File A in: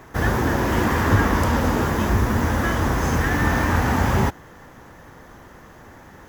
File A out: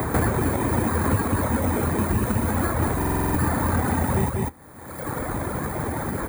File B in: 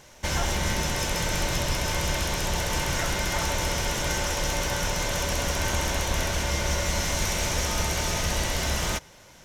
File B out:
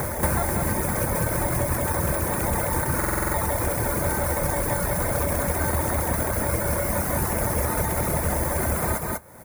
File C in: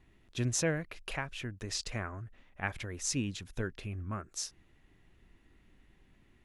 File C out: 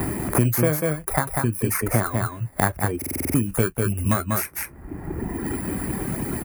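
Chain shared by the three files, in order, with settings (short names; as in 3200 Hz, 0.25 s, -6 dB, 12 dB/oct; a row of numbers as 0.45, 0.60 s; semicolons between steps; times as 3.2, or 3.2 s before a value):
FFT order left unsorted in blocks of 16 samples; band shelf 4100 Hz -14 dB 1.3 oct; doubler 26 ms -13 dB; reverb removal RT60 1.8 s; HPF 66 Hz; high shelf 6300 Hz -5 dB; echo 0.193 s -5.5 dB; stuck buffer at 2.97, samples 2048, times 7; three-band squash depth 100%; match loudness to -24 LUFS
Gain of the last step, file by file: +0.5, +7.0, +17.5 dB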